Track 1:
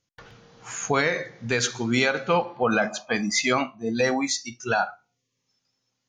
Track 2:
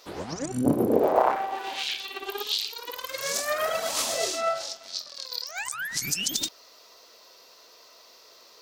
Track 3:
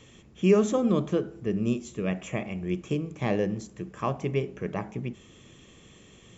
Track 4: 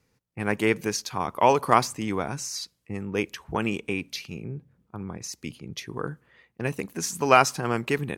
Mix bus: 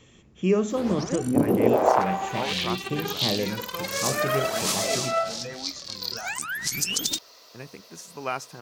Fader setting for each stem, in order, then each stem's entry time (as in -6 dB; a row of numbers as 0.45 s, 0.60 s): -16.0 dB, +1.5 dB, -1.5 dB, -13.0 dB; 1.45 s, 0.70 s, 0.00 s, 0.95 s